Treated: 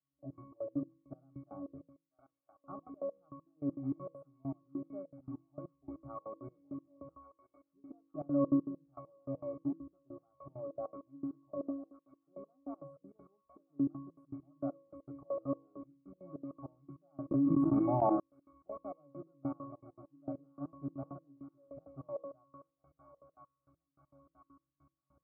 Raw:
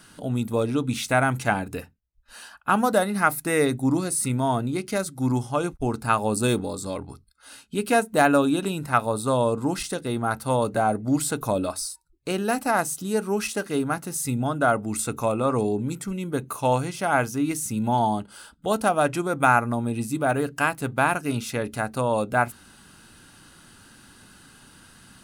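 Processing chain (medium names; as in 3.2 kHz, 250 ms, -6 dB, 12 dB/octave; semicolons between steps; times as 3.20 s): rattle on loud lows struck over -26 dBFS, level -12 dBFS; Chebyshev band-stop 920–8800 Hz, order 2; band-passed feedback delay 998 ms, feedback 79%, band-pass 2 kHz, level -12.5 dB; de-esser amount 95%; pitch-class resonator C#, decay 0.7 s; trance gate "...x.xx.x.x...x" 199 bpm -24 dB; high-order bell 690 Hz +8.5 dB 2.4 oct; comb of notches 530 Hz; de-hum 163.3 Hz, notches 3; 17.31–18.20 s: level flattener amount 100%; trim +1 dB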